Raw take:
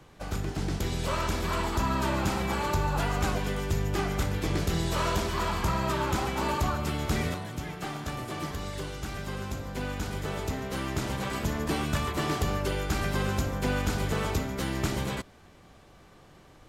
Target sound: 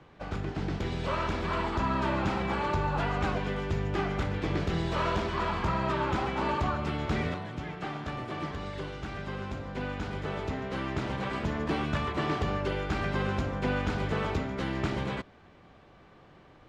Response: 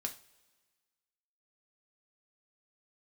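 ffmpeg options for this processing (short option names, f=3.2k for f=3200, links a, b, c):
-af "lowpass=3.2k,lowshelf=f=63:g=-7.5"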